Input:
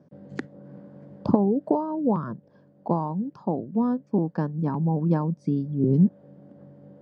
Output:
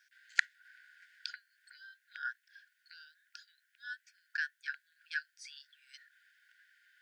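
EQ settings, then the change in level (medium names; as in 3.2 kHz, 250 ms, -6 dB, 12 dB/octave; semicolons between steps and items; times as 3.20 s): brick-wall FIR high-pass 1.4 kHz; +12.0 dB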